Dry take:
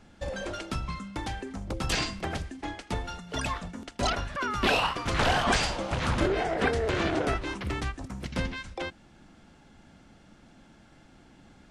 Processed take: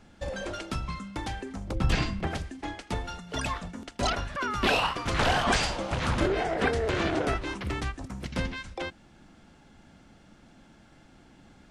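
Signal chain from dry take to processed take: 1.75–2.27 s: tone controls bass +8 dB, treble -9 dB

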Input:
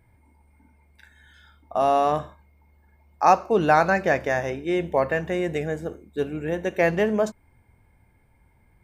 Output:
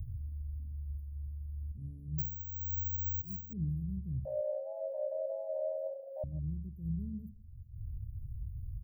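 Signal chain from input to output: vibrato 0.71 Hz 21 cents; in parallel at +0.5 dB: upward compressor, threshold -23 dBFS; on the sum: inverse Chebyshev band-stop 650–6400 Hz, stop band 80 dB; vibrato 1.7 Hz 12 cents; 4.25–6.24 s: frequency shift +470 Hz; on a send: delay 155 ms -21 dB; 2.18–3.53 s: on the sum: careless resampling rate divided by 2×, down filtered, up zero stuff; attacks held to a fixed rise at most 150 dB/s

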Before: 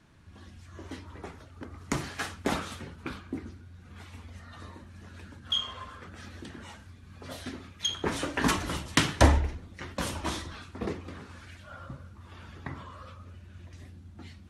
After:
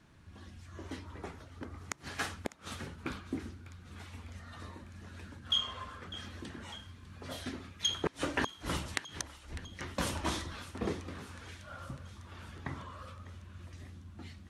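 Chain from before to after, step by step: inverted gate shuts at -16 dBFS, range -32 dB; thinning echo 601 ms, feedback 69%, high-pass 1 kHz, level -15.5 dB; trim -1.5 dB

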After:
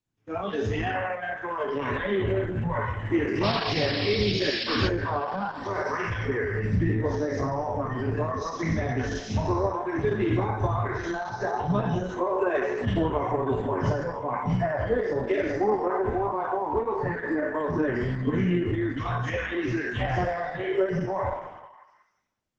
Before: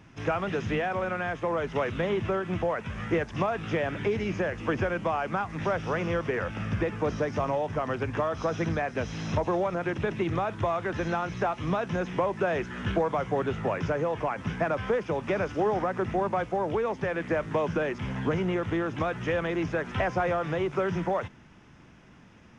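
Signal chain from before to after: spectral sustain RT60 2.21 s; gate with hold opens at -22 dBFS; hum notches 50/100/150 Hz; spectral noise reduction 20 dB; bass shelf 320 Hz +6 dB; 13.43–13.85 s: band-stop 2.2 kHz, Q 7.5; in parallel at +3 dB: level held to a coarse grid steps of 11 dB; on the sum: peak limiter -10.5 dBFS, peak gain reduction 6 dB; 3.43–4.88 s: painted sound noise 2.2–5.5 kHz -29 dBFS; flange 1.1 Hz, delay 6.1 ms, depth 5.6 ms, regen -27%; on a send: repeats whose band climbs or falls 186 ms, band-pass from 570 Hz, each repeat 0.7 oct, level -11.5 dB; on the sum: trim -2 dB; Opus 10 kbps 48 kHz

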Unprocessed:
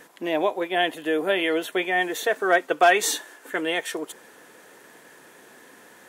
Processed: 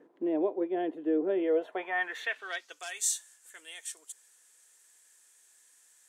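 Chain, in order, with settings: band-pass sweep 340 Hz -> 7.9 kHz, 1.37–2.85 s

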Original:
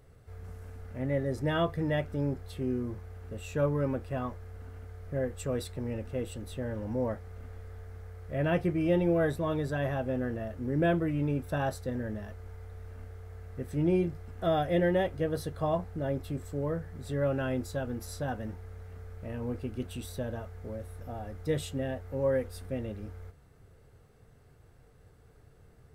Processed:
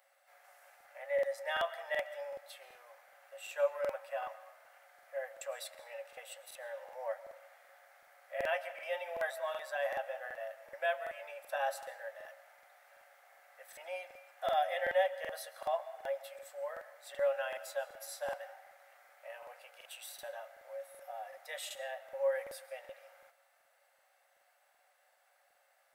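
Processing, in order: rippled Chebyshev high-pass 540 Hz, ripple 6 dB; treble shelf 11 kHz +10 dB; on a send at -14 dB: reverberation RT60 1.1 s, pre-delay 90 ms; on the sum: crackling interface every 0.38 s, samples 2048, repeat, from 0.76 s; trim +1 dB

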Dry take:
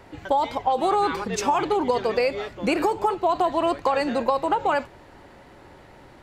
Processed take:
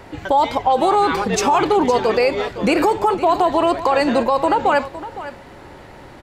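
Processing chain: peak limiter -15 dBFS, peak gain reduction 6.5 dB; on a send: delay 511 ms -14.5 dB; 0.90–2.33 s: on the sum: crackle 36 per s -50 dBFS; trim +8 dB

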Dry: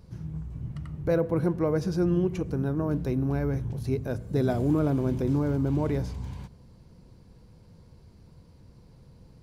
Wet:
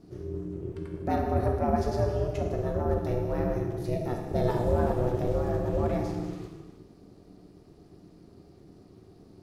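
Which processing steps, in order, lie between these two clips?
gated-style reverb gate 490 ms falling, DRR 1 dB; ring modulator 240 Hz

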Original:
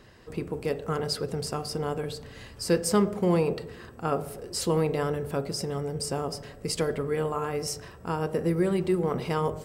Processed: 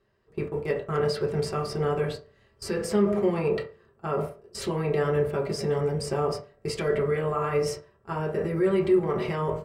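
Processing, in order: peak limiter -22.5 dBFS, peak gain reduction 10 dB; gate -35 dBFS, range -20 dB; treble shelf 4.9 kHz -6.5 dB; reverberation RT60 0.35 s, pre-delay 3 ms, DRR -2.5 dB; dynamic bell 2.1 kHz, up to +6 dB, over -50 dBFS, Q 1.6

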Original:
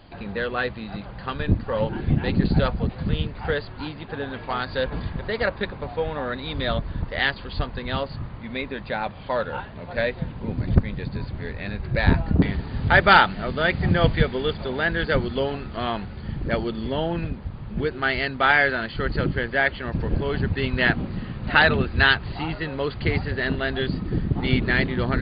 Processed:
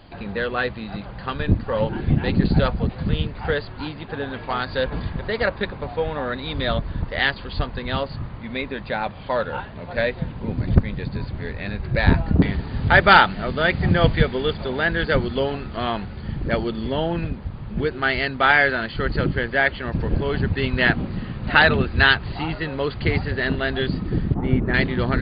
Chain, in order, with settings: 24.34–24.74 s: low-pass 1.2 kHz 12 dB/octave; trim +2 dB

